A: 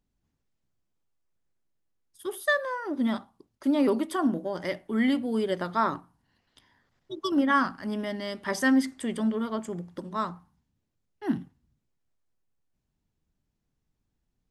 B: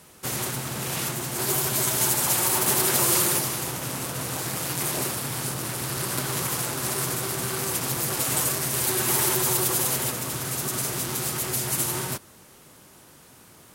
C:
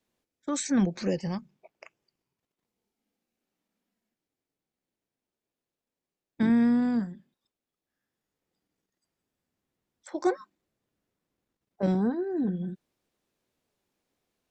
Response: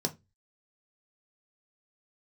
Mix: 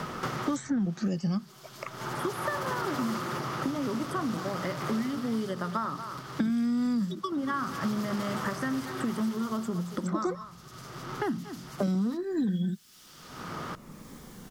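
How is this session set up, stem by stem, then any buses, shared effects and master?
-1.0 dB, 0.00 s, bus A, no send, echo send -13.5 dB, compression 4:1, threshold -36 dBFS, peak gain reduction 15 dB
-11.5 dB, 0.00 s, no bus, no send, no echo send, resonant high shelf 6.7 kHz -13 dB, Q 1.5; auto duck -19 dB, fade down 1.45 s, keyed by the third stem
+0.5 dB, 0.00 s, bus A, no send, no echo send, Shepard-style phaser falling 0.58 Hz
bus A: 0.0 dB, peaking EQ 210 Hz +7.5 dB 0.47 oct; peak limiter -19 dBFS, peak gain reduction 9.5 dB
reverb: none
echo: delay 232 ms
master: graphic EQ with 31 bands 160 Hz +6 dB, 1.25 kHz +10 dB, 2.5 kHz -5 dB, 4 kHz -5 dB; three bands compressed up and down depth 100%

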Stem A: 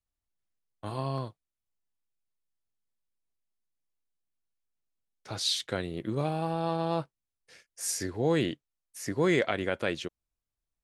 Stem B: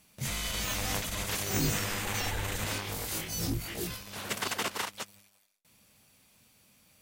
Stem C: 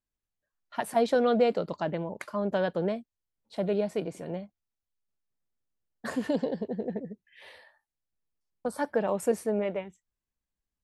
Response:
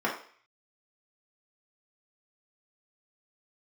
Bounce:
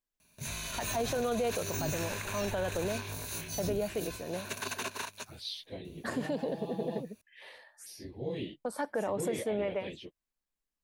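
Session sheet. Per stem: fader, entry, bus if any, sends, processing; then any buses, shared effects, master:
-9.5 dB, 0.00 s, no send, phase randomisation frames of 50 ms; expander -49 dBFS; touch-sensitive phaser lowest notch 410 Hz, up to 1.4 kHz, full sweep at -31.5 dBFS
-5.5 dB, 0.20 s, no send, rippled EQ curve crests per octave 1.5, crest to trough 10 dB
-0.5 dB, 0.00 s, no send, peaking EQ 83 Hz -13 dB 1.7 oct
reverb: none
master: peak limiter -23.5 dBFS, peak gain reduction 9.5 dB

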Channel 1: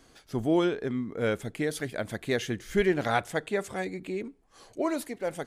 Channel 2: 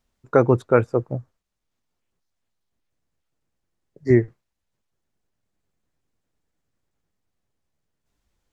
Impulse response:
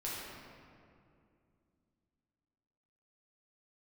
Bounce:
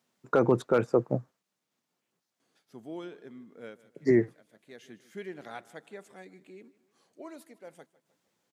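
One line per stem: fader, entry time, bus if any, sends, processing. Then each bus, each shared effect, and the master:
-16.0 dB, 2.40 s, no send, echo send -20 dB, auto duck -16 dB, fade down 0.30 s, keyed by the second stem
+2.0 dB, 0.00 s, no send, no echo send, hard clipper -4.5 dBFS, distortion -26 dB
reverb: none
echo: feedback delay 154 ms, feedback 47%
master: high-pass 150 Hz 24 dB/octave; peak limiter -13 dBFS, peak gain reduction 11.5 dB

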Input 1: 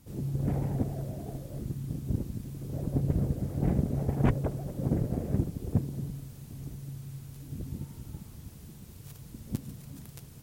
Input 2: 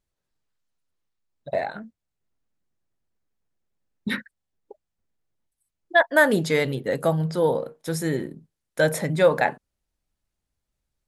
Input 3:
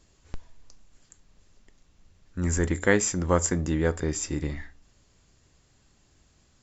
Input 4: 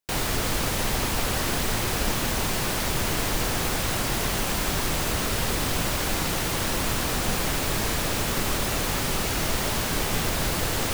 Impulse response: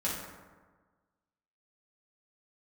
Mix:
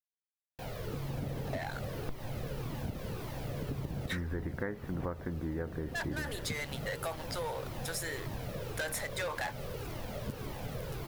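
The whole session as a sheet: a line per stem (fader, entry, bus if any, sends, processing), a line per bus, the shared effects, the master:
-5.0 dB, 0.75 s, no send, none
-16.5 dB, 0.00 s, no send, high-pass 950 Hz 12 dB/octave; waveshaping leveller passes 5
+2.0 dB, 1.75 s, no send, steep low-pass 1.9 kHz
-15.0 dB, 0.50 s, no send, graphic EQ 125/500/8000 Hz +11/+12/-9 dB; Shepard-style flanger falling 1.8 Hz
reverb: none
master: compression 10:1, threshold -33 dBFS, peak gain reduction 19 dB

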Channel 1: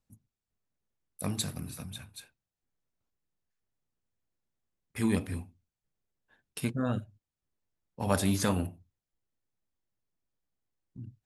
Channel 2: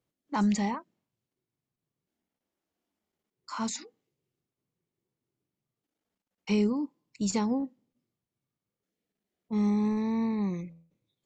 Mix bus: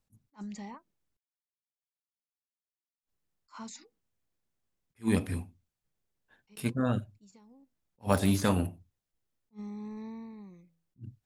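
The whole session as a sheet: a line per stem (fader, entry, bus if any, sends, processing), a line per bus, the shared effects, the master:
+2.0 dB, 0.00 s, muted 1.17–3.03 s, no send, de-esser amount 75%
-10.0 dB, 0.00 s, no send, gate with hold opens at -56 dBFS; compression, threshold -28 dBFS, peak gain reduction 7 dB; endings held to a fixed fall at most 440 dB/s; auto duck -16 dB, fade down 0.90 s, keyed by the first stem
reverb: none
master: attacks held to a fixed rise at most 400 dB/s

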